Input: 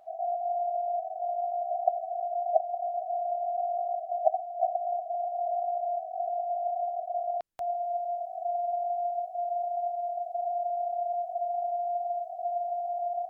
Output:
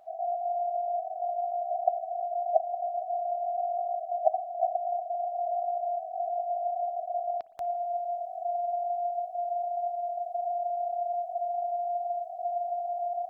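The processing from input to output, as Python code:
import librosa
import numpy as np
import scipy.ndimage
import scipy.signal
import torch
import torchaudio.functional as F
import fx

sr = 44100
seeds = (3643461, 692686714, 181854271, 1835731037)

y = fx.rev_spring(x, sr, rt60_s=2.4, pass_ms=(55,), chirp_ms=70, drr_db=15.0)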